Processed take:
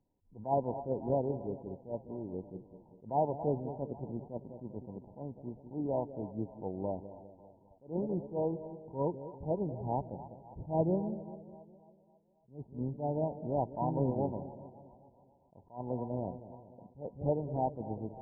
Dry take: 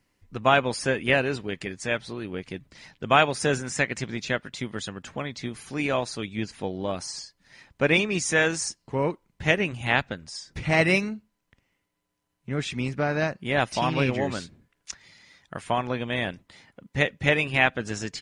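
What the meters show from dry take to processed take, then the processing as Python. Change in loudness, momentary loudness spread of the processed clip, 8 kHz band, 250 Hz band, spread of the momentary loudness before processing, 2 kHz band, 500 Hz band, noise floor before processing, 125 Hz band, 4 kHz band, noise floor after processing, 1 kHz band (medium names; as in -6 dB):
-10.5 dB, 17 LU, under -40 dB, -7.5 dB, 15 LU, under -40 dB, -7.5 dB, -76 dBFS, -7.5 dB, under -40 dB, -66 dBFS, -9.5 dB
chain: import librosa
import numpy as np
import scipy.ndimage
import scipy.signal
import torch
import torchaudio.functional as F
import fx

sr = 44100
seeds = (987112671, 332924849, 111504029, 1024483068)

y = fx.brickwall_lowpass(x, sr, high_hz=1000.0)
y = fx.echo_split(y, sr, split_hz=650.0, low_ms=200, high_ms=273, feedback_pct=52, wet_db=-13)
y = fx.attack_slew(y, sr, db_per_s=200.0)
y = F.gain(torch.from_numpy(y), -6.5).numpy()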